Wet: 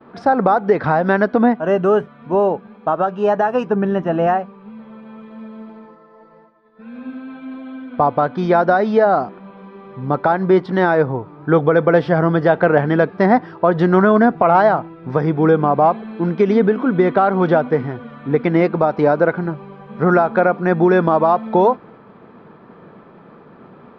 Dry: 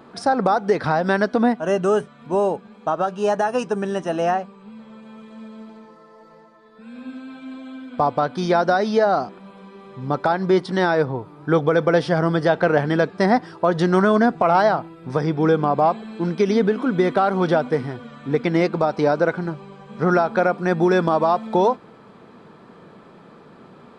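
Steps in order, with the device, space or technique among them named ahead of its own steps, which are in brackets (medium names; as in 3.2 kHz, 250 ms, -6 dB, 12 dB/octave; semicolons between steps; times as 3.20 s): hearing-loss simulation (low-pass 2.3 kHz 12 dB/octave; expander -44 dBFS); 3.69–4.27 s: tone controls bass +6 dB, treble -7 dB; trim +4 dB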